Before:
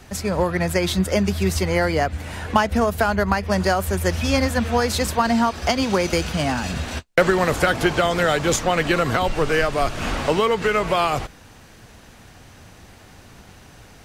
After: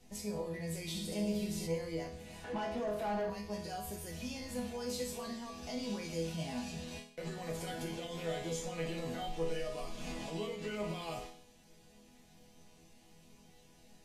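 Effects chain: peaking EQ 1.4 kHz -14 dB 0.9 oct; peak limiter -17 dBFS, peak gain reduction 11.5 dB; chord resonator E3 major, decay 0.53 s; 0.81–1.67 s: flutter echo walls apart 11.5 m, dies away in 0.86 s; 2.44–3.30 s: overdrive pedal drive 21 dB, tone 1 kHz, clips at -32.5 dBFS; trim +5.5 dB; Vorbis 64 kbps 32 kHz

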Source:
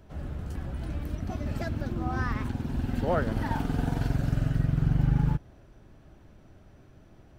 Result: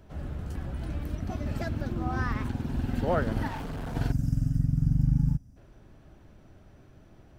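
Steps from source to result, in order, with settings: 3.48–3.95 s: hard clipper -33 dBFS, distortion -14 dB; 4.11–5.57 s: time-frequency box 280–4700 Hz -17 dB

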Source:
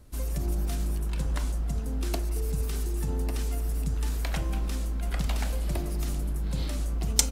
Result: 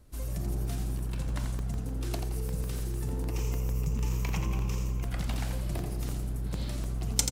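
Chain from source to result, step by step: 3.31–5.04 s: rippled EQ curve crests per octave 0.76, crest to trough 11 dB; frequency-shifting echo 85 ms, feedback 36%, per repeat +64 Hz, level -7 dB; crackling interface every 0.15 s, samples 64, zero, from 0.99 s; trim -4.5 dB

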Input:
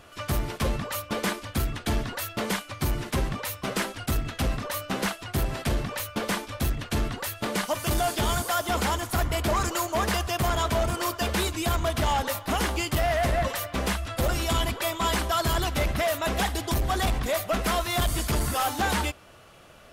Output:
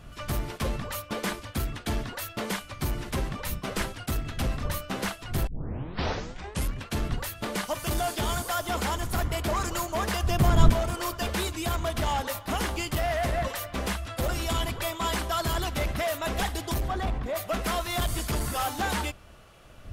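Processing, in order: wind noise 89 Hz -36 dBFS; 5.47 s: tape start 1.46 s; 10.23–10.70 s: bass shelf 410 Hz +10 dB; 16.87–17.35 s: low-pass 1.8 kHz -> 1.1 kHz 6 dB/octave; trim -3 dB

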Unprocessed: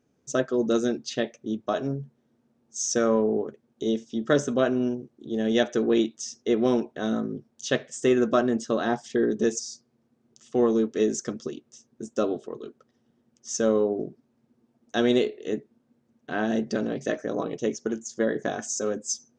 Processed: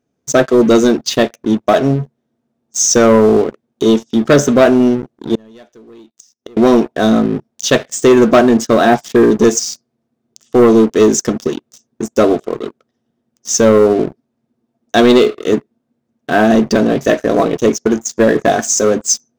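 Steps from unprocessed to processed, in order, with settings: small resonant body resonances 680/3600 Hz, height 8 dB, ringing for 75 ms; waveshaping leveller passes 3; 5.35–6.57 s: inverted gate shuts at -19 dBFS, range -31 dB; trim +5 dB

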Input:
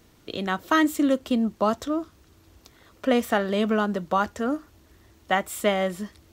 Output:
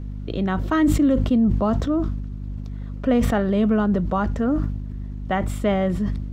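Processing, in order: RIAA curve playback; hum 50 Hz, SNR 12 dB; in parallel at +1 dB: peak limiter -17 dBFS, peak gain reduction 10 dB; on the sum: decay stretcher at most 40 dB/s; trim -5.5 dB

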